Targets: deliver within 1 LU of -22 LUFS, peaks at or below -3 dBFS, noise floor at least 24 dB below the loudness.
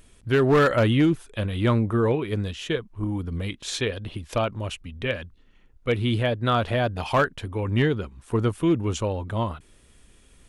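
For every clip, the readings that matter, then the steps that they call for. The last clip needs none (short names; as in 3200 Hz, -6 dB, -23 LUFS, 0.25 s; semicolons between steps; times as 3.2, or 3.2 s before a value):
clipped 0.5%; flat tops at -13.5 dBFS; loudness -25.0 LUFS; peak -13.5 dBFS; loudness target -22.0 LUFS
-> clip repair -13.5 dBFS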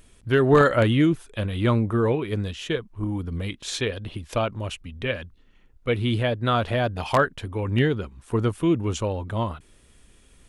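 clipped 0.0%; loudness -24.5 LUFS; peak -4.5 dBFS; loudness target -22.0 LUFS
-> gain +2.5 dB; limiter -3 dBFS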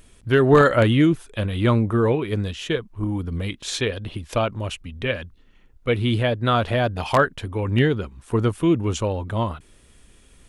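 loudness -22.0 LUFS; peak -3.0 dBFS; noise floor -54 dBFS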